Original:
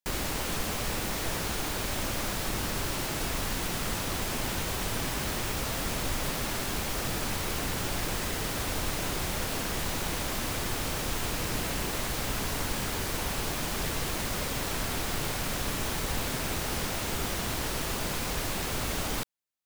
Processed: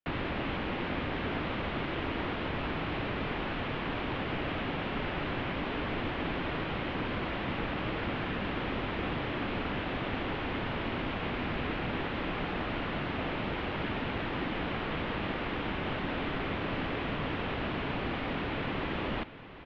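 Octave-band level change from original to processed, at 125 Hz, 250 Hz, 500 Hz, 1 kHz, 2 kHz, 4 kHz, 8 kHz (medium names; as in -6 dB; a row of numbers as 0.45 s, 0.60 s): -1.5 dB, +2.0 dB, +0.5 dB, 0.0 dB, -0.5 dB, -6.5 dB, under -35 dB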